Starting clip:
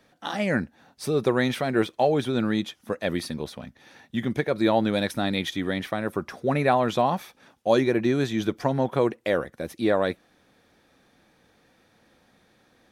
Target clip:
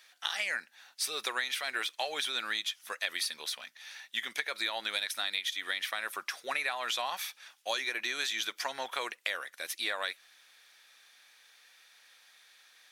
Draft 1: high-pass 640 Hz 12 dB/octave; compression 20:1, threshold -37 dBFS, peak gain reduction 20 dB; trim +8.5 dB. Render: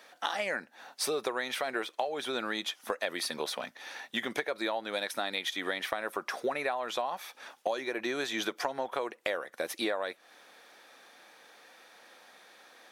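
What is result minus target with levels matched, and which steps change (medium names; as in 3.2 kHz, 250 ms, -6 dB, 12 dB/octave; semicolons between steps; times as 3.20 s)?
500 Hz band +10.0 dB
change: high-pass 2.1 kHz 12 dB/octave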